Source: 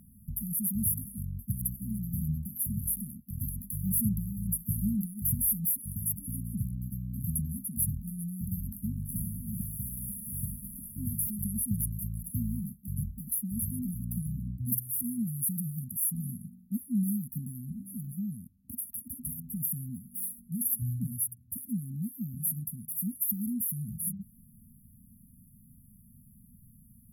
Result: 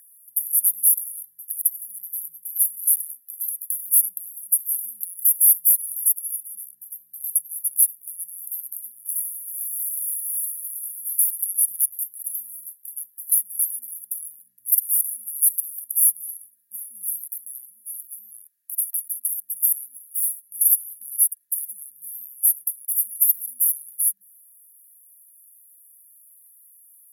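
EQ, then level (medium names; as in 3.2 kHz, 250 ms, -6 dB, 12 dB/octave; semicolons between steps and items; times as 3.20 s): resonant high-pass 1.7 kHz, resonance Q 9.8; treble shelf 3.9 kHz +6.5 dB; peaking EQ 10 kHz +12 dB 2.6 oct; -4.5 dB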